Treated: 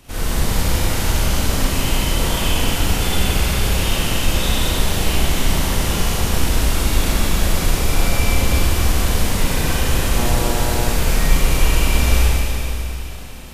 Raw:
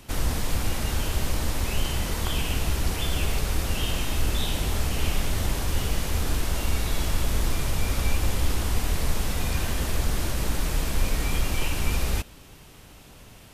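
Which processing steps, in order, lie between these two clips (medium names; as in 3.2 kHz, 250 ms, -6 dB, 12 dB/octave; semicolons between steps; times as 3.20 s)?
Schroeder reverb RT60 3.2 s, combs from 33 ms, DRR -10 dB; 10.16–10.93 s: mains buzz 120 Hz, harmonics 8, -25 dBFS -1 dB/octave; trim -1 dB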